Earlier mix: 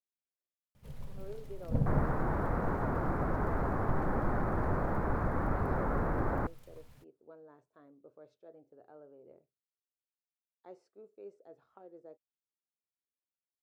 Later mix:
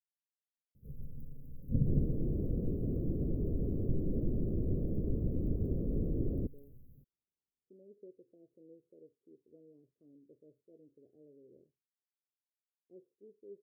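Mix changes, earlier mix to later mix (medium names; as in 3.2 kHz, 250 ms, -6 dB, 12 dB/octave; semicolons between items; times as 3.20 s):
speech: entry +2.25 s; master: add inverse Chebyshev band-stop 810–8300 Hz, stop band 40 dB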